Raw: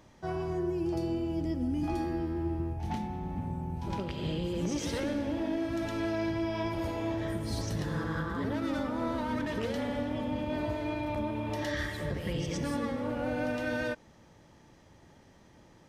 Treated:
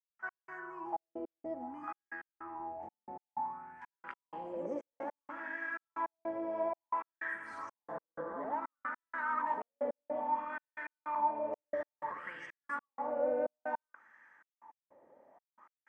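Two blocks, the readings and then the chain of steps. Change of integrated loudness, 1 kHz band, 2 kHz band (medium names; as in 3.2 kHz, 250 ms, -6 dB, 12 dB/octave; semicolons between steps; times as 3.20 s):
-6.0 dB, +2.0 dB, -2.0 dB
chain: graphic EQ 125/250/1000/2000/4000/8000 Hz -4/+8/+11/+10/-9/+12 dB; wah-wah 0.58 Hz 530–1700 Hz, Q 6.6; trance gate "..x..xxxxx" 156 bpm -60 dB; trim +2.5 dB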